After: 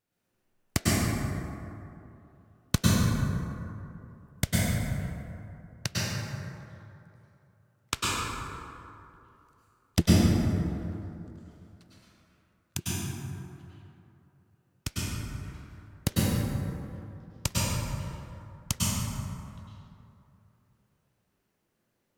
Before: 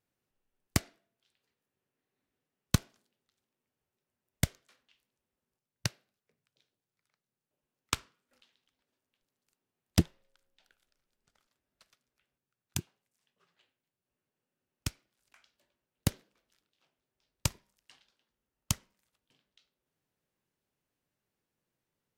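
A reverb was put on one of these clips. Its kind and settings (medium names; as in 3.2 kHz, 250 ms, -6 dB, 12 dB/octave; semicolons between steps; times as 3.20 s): plate-style reverb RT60 2.8 s, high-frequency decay 0.4×, pre-delay 90 ms, DRR -8.5 dB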